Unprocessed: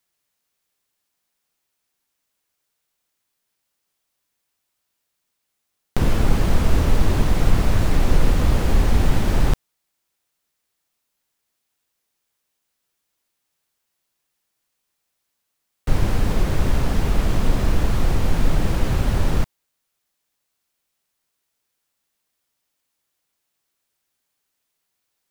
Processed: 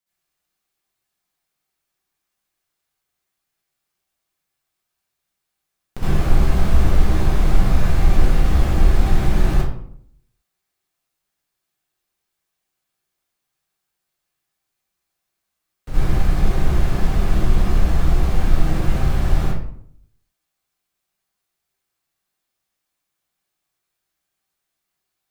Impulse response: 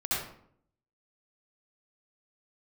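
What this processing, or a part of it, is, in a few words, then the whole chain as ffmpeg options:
bathroom: -filter_complex "[1:a]atrim=start_sample=2205[s0];[0:a][s0]afir=irnorm=-1:irlink=0,volume=0.376"

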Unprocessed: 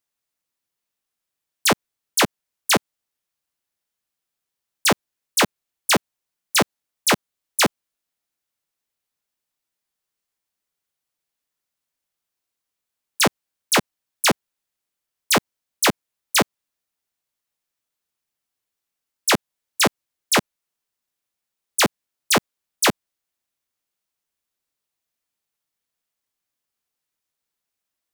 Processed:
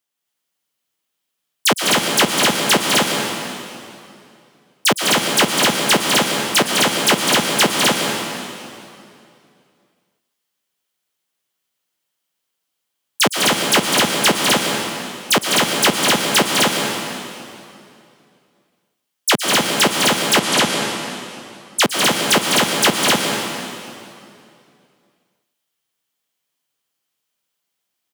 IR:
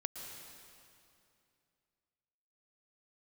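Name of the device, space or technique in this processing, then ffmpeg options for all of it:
stadium PA: -filter_complex "[0:a]highpass=120,equalizer=f=3100:t=o:w=0.24:g=6,aecho=1:1:204.1|256.6:0.562|0.794[s0];[1:a]atrim=start_sample=2205[s1];[s0][s1]afir=irnorm=-1:irlink=0,asettb=1/sr,asplit=3[s2][s3][s4];[s2]atrim=end=20.394[s5];[s3]atrim=start=20.39:end=21.82,asetpts=PTS-STARTPTS,afade=t=in:d=0.004:c=qsin,afade=t=out:st=1.426:d=0.004:c=qsin,lowpass=12000[s6];[s4]atrim=start=21.816[s7];[s5][s6]acrossfade=d=0.004:c1=hsin:c2=qsin[s8];[s8][s7]acrossfade=d=0.004:c1=qsin:c2=hsin,volume=1.58"

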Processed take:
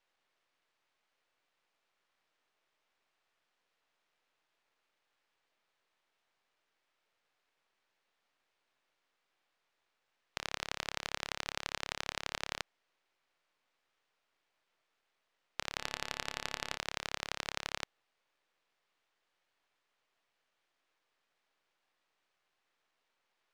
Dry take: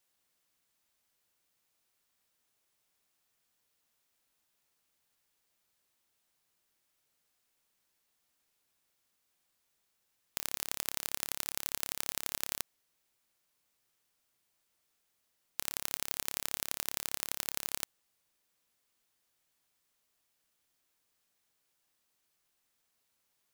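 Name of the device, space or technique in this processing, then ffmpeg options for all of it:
crystal radio: -filter_complex "[0:a]asplit=3[s0][s1][s2];[s0]afade=t=out:st=15.78:d=0.02[s3];[s1]bandreject=f=124.5:t=h:w=4,bandreject=f=249:t=h:w=4,bandreject=f=373.5:t=h:w=4,bandreject=f=498:t=h:w=4,bandreject=f=622.5:t=h:w=4,bandreject=f=747:t=h:w=4,bandreject=f=871.5:t=h:w=4,bandreject=f=996:t=h:w=4,bandreject=f=1120.5:t=h:w=4,bandreject=f=1245:t=h:w=4,bandreject=f=1369.5:t=h:w=4,bandreject=f=1494:t=h:w=4,bandreject=f=1618.5:t=h:w=4,bandreject=f=1743:t=h:w=4,bandreject=f=1867.5:t=h:w=4,bandreject=f=1992:t=h:w=4,bandreject=f=2116.5:t=h:w=4,bandreject=f=2241:t=h:w=4,bandreject=f=2365.5:t=h:w=4,bandreject=f=2490:t=h:w=4,bandreject=f=2614.5:t=h:w=4,bandreject=f=2739:t=h:w=4,bandreject=f=2863.5:t=h:w=4,bandreject=f=2988:t=h:w=4,bandreject=f=3112.5:t=h:w=4,bandreject=f=3237:t=h:w=4,bandreject=f=3361.5:t=h:w=4,bandreject=f=3486:t=h:w=4,afade=t=in:st=15.78:d=0.02,afade=t=out:st=16.75:d=0.02[s4];[s2]afade=t=in:st=16.75:d=0.02[s5];[s3][s4][s5]amix=inputs=3:normalize=0,highpass=400,lowpass=2900,aeval=exprs='if(lt(val(0),0),0.251*val(0),val(0))':c=same,volume=2.51"

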